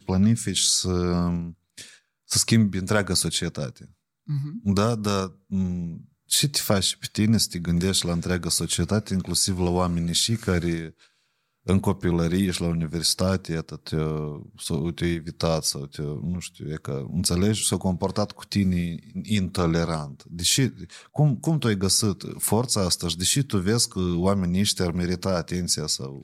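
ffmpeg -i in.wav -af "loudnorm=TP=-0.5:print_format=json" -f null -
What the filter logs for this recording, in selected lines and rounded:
"input_i" : "-24.1",
"input_tp" : "-4.3",
"input_lra" : "2.9",
"input_thresh" : "-34.5",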